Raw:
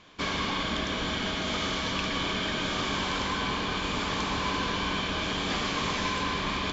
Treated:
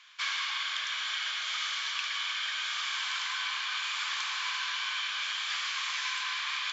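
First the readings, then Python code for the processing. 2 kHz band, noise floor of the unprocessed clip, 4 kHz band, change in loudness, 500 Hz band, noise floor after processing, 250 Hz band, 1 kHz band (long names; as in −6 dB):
−0.5 dB, −31 dBFS, 0.0 dB, −2.0 dB, below −25 dB, −35 dBFS, below −40 dB, −7.5 dB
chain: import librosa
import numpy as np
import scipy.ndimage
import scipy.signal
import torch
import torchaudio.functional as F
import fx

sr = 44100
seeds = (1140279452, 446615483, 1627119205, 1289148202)

y = scipy.signal.sosfilt(scipy.signal.butter(4, 1300.0, 'highpass', fs=sr, output='sos'), x)
y = fx.rider(y, sr, range_db=10, speed_s=0.5)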